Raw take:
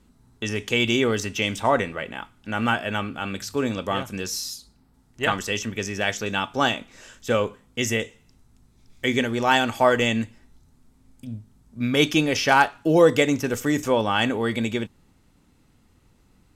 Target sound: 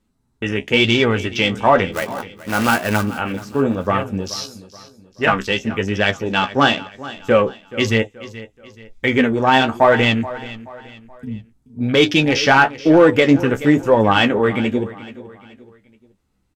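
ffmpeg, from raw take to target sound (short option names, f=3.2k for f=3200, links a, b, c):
-filter_complex "[0:a]afwtdn=0.0282,asplit=2[a][b];[b]asoftclip=type=hard:threshold=-15dB,volume=-8.5dB[c];[a][c]amix=inputs=2:normalize=0,asplit=3[d][e][f];[d]afade=t=out:st=1.92:d=0.02[g];[e]acrusher=bits=2:mode=log:mix=0:aa=0.000001,afade=t=in:st=1.92:d=0.02,afade=t=out:st=3.02:d=0.02[h];[f]afade=t=in:st=3.02:d=0.02[i];[g][h][i]amix=inputs=3:normalize=0,flanger=delay=9.2:depth=6.4:regen=37:speed=1:shape=sinusoidal,asplit=2[j][k];[k]aecho=0:1:428|856|1284:0.141|0.0551|0.0215[l];[j][l]amix=inputs=2:normalize=0,alimiter=level_in=9.5dB:limit=-1dB:release=50:level=0:latency=1,volume=-1dB"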